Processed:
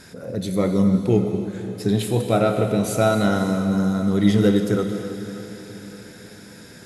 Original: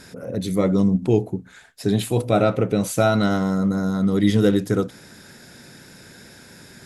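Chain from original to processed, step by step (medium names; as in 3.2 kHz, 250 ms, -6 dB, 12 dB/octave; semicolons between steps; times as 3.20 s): echo that smears into a reverb 532 ms, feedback 47%, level -13 dB; gated-style reverb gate 350 ms flat, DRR 6.5 dB; trim -1 dB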